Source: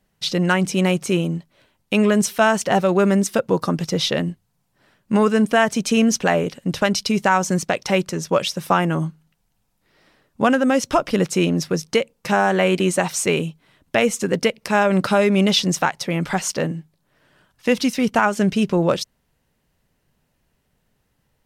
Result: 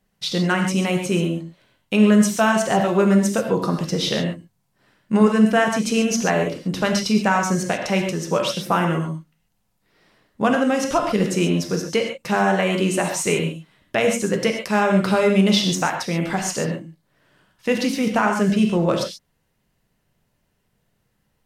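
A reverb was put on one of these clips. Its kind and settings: gated-style reverb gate 160 ms flat, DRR 2.5 dB; trim -3 dB

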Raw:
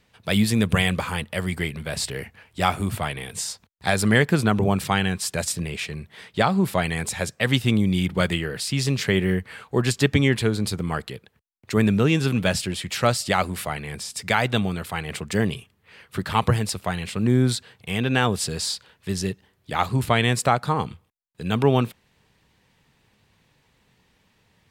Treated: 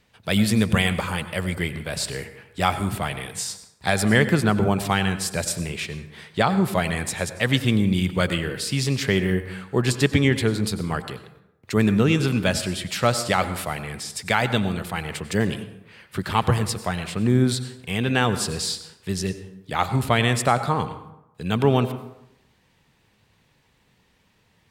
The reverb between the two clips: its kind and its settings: plate-style reverb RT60 0.86 s, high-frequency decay 0.55×, pre-delay 80 ms, DRR 11.5 dB

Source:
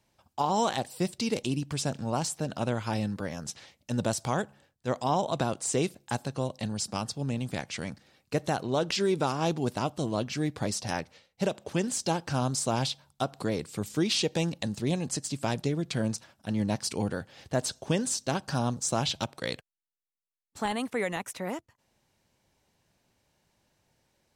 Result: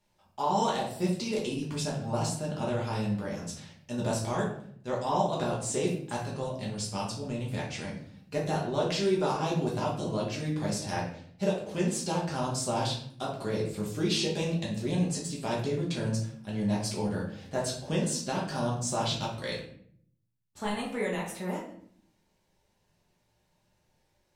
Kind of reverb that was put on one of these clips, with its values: simulated room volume 93 m³, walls mixed, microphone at 1.3 m; trim -7 dB

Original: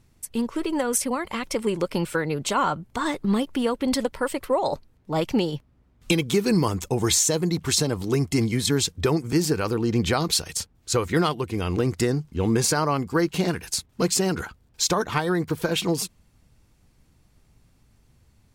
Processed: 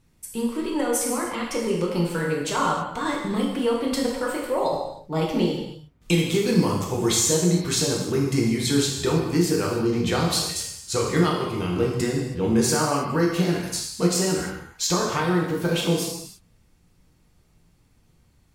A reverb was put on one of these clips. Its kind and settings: gated-style reverb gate 350 ms falling, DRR -3 dB; trim -4.5 dB

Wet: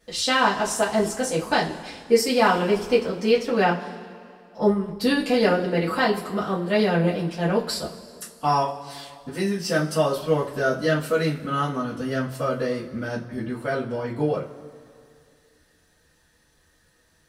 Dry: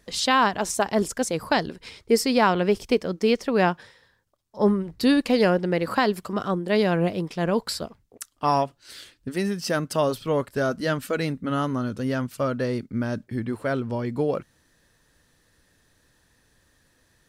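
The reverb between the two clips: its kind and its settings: two-slope reverb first 0.24 s, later 2.3 s, from -21 dB, DRR -9 dB; trim -8 dB

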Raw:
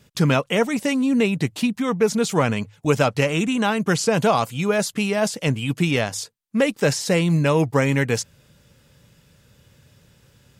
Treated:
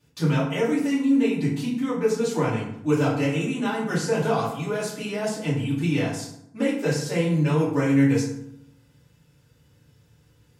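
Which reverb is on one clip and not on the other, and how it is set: FDN reverb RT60 0.74 s, low-frequency decay 1.35×, high-frequency decay 0.6×, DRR -9 dB; trim -15.5 dB

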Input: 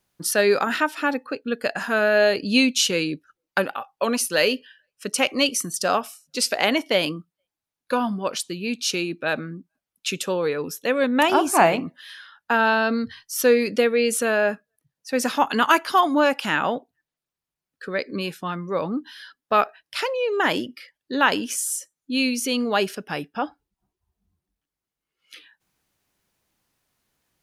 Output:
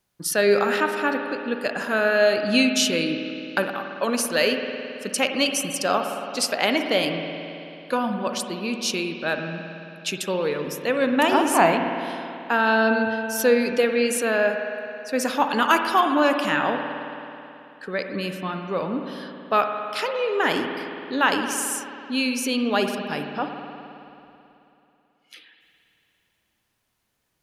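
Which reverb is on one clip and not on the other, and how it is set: spring tank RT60 2.9 s, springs 54 ms, chirp 65 ms, DRR 5 dB; trim -1.5 dB

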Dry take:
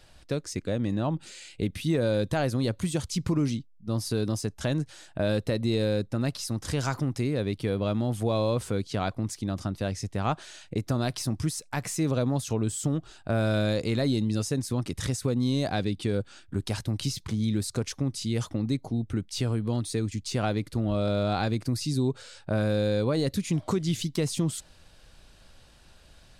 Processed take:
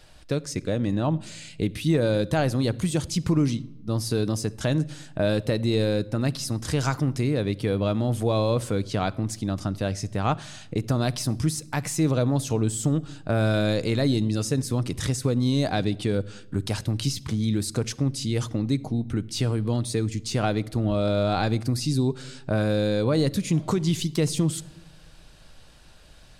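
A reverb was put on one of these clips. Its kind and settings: simulated room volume 3900 m³, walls furnished, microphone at 0.49 m; trim +3 dB

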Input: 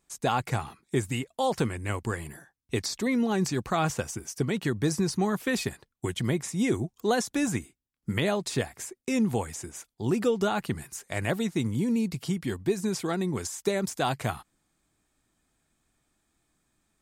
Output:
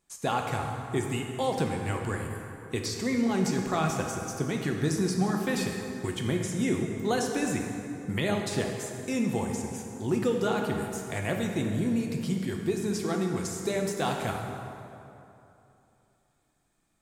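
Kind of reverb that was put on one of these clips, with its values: plate-style reverb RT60 2.9 s, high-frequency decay 0.6×, DRR 1.5 dB; trim -3 dB

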